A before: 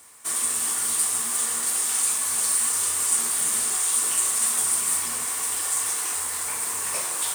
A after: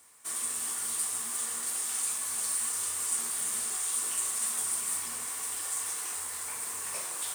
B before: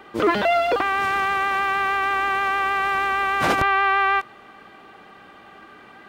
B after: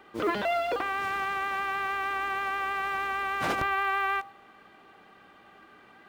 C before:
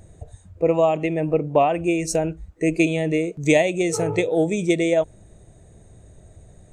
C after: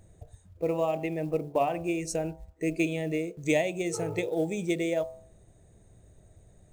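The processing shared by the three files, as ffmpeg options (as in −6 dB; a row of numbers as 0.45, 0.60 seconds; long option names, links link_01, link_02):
-af "bandreject=frequency=72.15:width_type=h:width=4,bandreject=frequency=144.3:width_type=h:width=4,bandreject=frequency=216.45:width_type=h:width=4,bandreject=frequency=288.6:width_type=h:width=4,bandreject=frequency=360.75:width_type=h:width=4,bandreject=frequency=432.9:width_type=h:width=4,bandreject=frequency=505.05:width_type=h:width=4,bandreject=frequency=577.2:width_type=h:width=4,bandreject=frequency=649.35:width_type=h:width=4,bandreject=frequency=721.5:width_type=h:width=4,bandreject=frequency=793.65:width_type=h:width=4,bandreject=frequency=865.8:width_type=h:width=4,bandreject=frequency=937.95:width_type=h:width=4,bandreject=frequency=1010.1:width_type=h:width=4,bandreject=frequency=1082.25:width_type=h:width=4,bandreject=frequency=1154.4:width_type=h:width=4,bandreject=frequency=1226.55:width_type=h:width=4,acrusher=bits=8:mode=log:mix=0:aa=0.000001,volume=-8.5dB"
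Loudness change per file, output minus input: −8.5, −8.5, −9.0 LU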